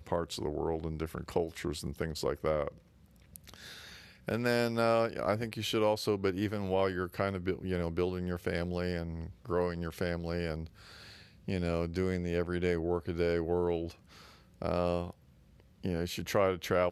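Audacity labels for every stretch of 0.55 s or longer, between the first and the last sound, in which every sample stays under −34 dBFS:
2.680000	3.360000	silence
3.540000	4.280000	silence
10.640000	11.480000	silence
13.910000	14.620000	silence
15.100000	15.850000	silence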